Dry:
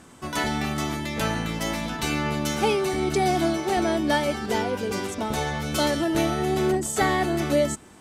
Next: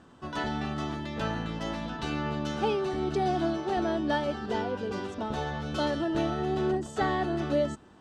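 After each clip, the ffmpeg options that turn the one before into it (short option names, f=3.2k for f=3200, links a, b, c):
-af "lowpass=3.6k,equalizer=f=2.2k:t=o:w=0.23:g=-12.5,volume=-5dB"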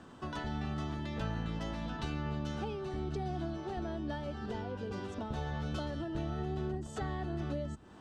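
-filter_complex "[0:a]acrossover=split=140[a][b];[b]acompressor=threshold=-41dB:ratio=6[c];[a][c]amix=inputs=2:normalize=0,volume=2dB"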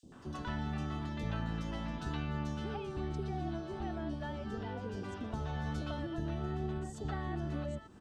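-filter_complex "[0:a]acrossover=split=520|4300[a][b][c];[a]adelay=30[d];[b]adelay=120[e];[d][e][c]amix=inputs=3:normalize=0"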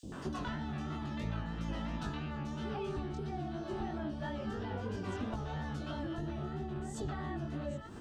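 -af "acompressor=threshold=-45dB:ratio=12,flanger=delay=17:depth=6:speed=3,volume=13.5dB"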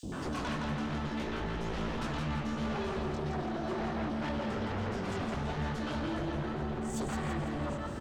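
-af "aeval=exprs='0.0596*sin(PI/2*3.98*val(0)/0.0596)':c=same,aecho=1:1:167|334|501|668|835|1002:0.562|0.276|0.135|0.0662|0.0324|0.0159,volume=-8.5dB"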